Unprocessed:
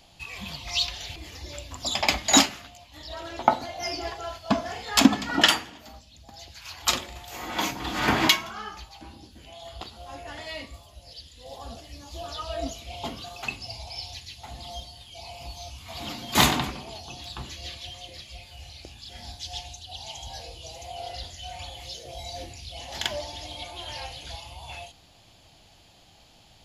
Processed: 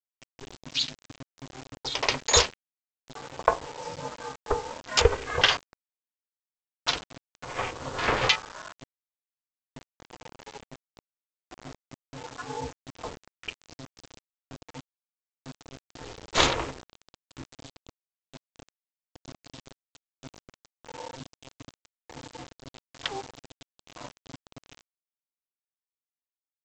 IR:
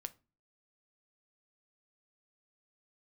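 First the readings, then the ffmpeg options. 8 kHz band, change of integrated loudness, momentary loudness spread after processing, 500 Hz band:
−4.0 dB, 0.0 dB, 24 LU, +1.5 dB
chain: -af "afwtdn=0.0251,aeval=exprs='val(0)*sin(2*PI*200*n/s)':channel_layout=same,lowshelf=frequency=160:gain=-4.5,aresample=16000,acrusher=bits=6:mix=0:aa=0.000001,aresample=44100,volume=1dB"

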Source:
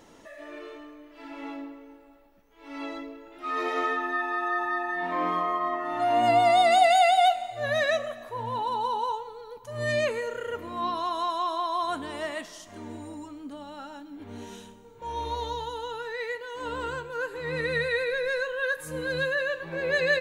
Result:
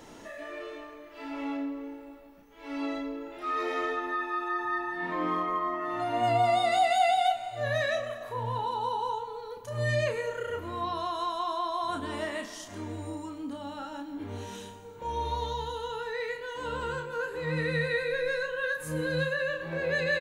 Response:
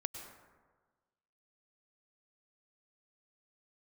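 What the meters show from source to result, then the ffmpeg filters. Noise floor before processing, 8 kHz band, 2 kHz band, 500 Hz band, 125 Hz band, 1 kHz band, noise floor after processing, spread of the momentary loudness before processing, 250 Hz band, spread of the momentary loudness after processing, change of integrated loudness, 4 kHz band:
−52 dBFS, −3.0 dB, −3.0 dB, −3.0 dB, +5.0 dB, −4.0 dB, −47 dBFS, 21 LU, +1.0 dB, 14 LU, −4.0 dB, −4.0 dB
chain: -filter_complex "[0:a]acrossover=split=230[link_01][link_02];[link_02]acompressor=threshold=-47dB:ratio=1.5[link_03];[link_01][link_03]amix=inputs=2:normalize=0,asplit=2[link_04][link_05];[link_05]adelay=32,volume=-5dB[link_06];[link_04][link_06]amix=inputs=2:normalize=0,asplit=2[link_07][link_08];[1:a]atrim=start_sample=2205[link_09];[link_08][link_09]afir=irnorm=-1:irlink=0,volume=-4dB[link_10];[link_07][link_10]amix=inputs=2:normalize=0"

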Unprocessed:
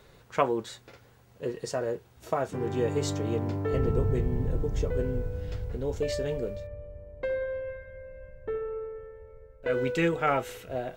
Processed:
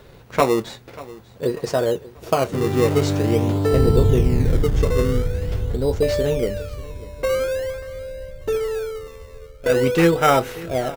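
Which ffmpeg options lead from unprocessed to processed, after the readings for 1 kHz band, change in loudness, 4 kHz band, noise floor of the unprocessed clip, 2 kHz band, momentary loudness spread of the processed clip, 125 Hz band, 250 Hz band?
+9.0 dB, +10.0 dB, +11.5 dB, −57 dBFS, +8.5 dB, 17 LU, +10.5 dB, +10.5 dB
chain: -filter_complex "[0:a]equalizer=frequency=7800:width_type=o:width=0.61:gain=-6,asplit=2[link_01][link_02];[link_02]acrusher=samples=19:mix=1:aa=0.000001:lfo=1:lforange=19:lforate=0.46,volume=-4dB[link_03];[link_01][link_03]amix=inputs=2:normalize=0,aecho=1:1:589|1178|1767:0.106|0.0434|0.0178,volume=6.5dB"

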